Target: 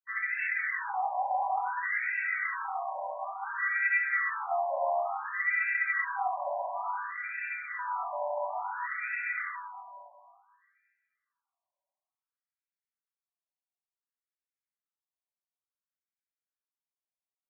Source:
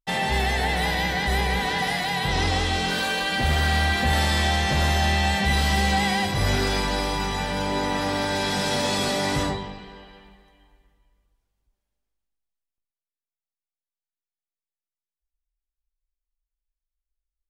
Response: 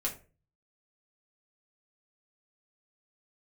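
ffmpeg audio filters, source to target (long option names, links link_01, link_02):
-filter_complex "[1:a]atrim=start_sample=2205,asetrate=22491,aresample=44100[link_01];[0:a][link_01]afir=irnorm=-1:irlink=0,afftfilt=real='re*between(b*sr/1024,760*pow(1900/760,0.5+0.5*sin(2*PI*0.57*pts/sr))/1.41,760*pow(1900/760,0.5+0.5*sin(2*PI*0.57*pts/sr))*1.41)':imag='im*between(b*sr/1024,760*pow(1900/760,0.5+0.5*sin(2*PI*0.57*pts/sr))/1.41,760*pow(1900/760,0.5+0.5*sin(2*PI*0.57*pts/sr))*1.41)':win_size=1024:overlap=0.75,volume=-8dB"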